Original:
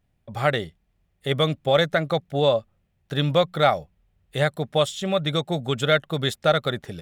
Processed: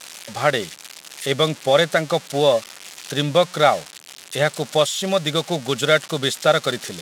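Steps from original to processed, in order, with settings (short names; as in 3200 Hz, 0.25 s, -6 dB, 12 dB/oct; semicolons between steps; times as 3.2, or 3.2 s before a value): switching spikes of -19.5 dBFS; BPF 180–7100 Hz; gain +3.5 dB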